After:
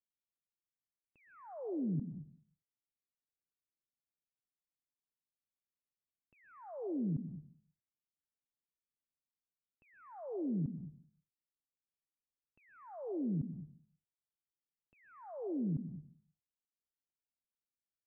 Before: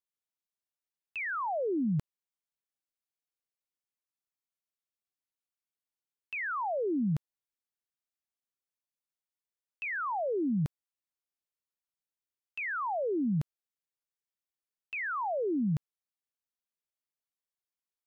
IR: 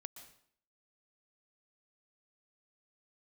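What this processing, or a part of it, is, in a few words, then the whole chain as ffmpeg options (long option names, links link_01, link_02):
television next door: -filter_complex "[0:a]acompressor=threshold=-32dB:ratio=6,lowpass=330[link_01];[1:a]atrim=start_sample=2205[link_02];[link_01][link_02]afir=irnorm=-1:irlink=0,volume=5dB"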